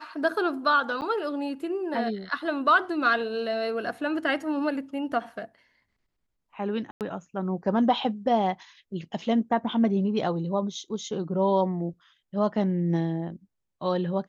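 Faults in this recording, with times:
1.01–1.02 gap 8.9 ms
6.91–7.01 gap 98 ms

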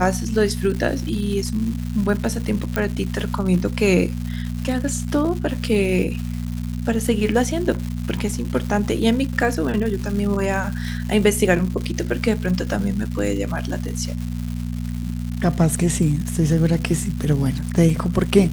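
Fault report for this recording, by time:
crackle 330/s -28 dBFS
hum 60 Hz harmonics 4 -26 dBFS
2.76 pop -8 dBFS

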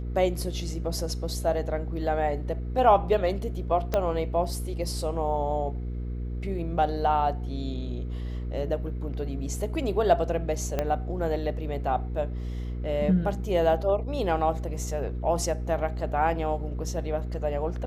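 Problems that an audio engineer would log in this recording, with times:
hum 60 Hz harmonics 8 -32 dBFS
3.94 pop -12 dBFS
10.79 pop -13 dBFS

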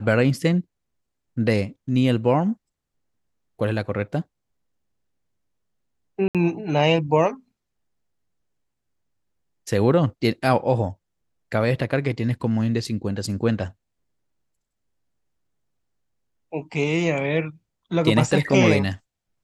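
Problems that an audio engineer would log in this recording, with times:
6.28–6.35 gap 67 ms

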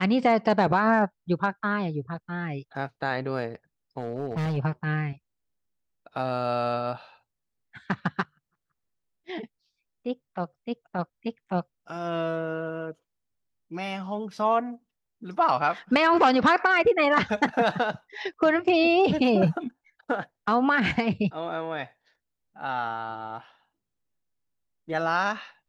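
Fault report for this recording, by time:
3.99–4.58 clipped -24.5 dBFS

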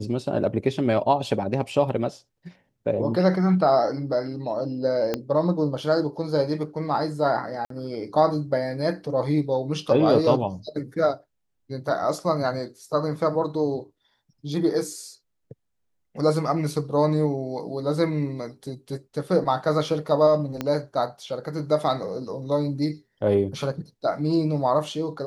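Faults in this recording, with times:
5.14 pop -11 dBFS
7.65–7.7 gap 53 ms
20.61 pop -13 dBFS

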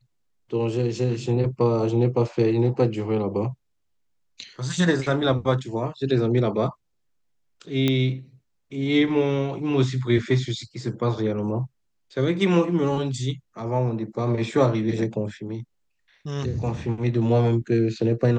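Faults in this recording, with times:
7.88 pop -9 dBFS

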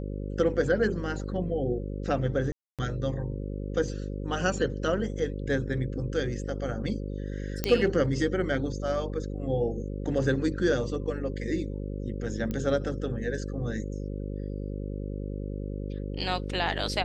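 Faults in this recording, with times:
buzz 50 Hz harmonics 11 -34 dBFS
2.52–2.79 gap 0.267 s
7.64 pop -10 dBFS
12.51 pop -20 dBFS

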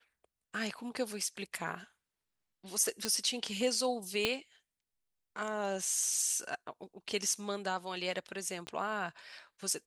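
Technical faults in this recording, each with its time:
3.05 pop -16 dBFS
4.25 pop -14 dBFS
8.67 pop -28 dBFS

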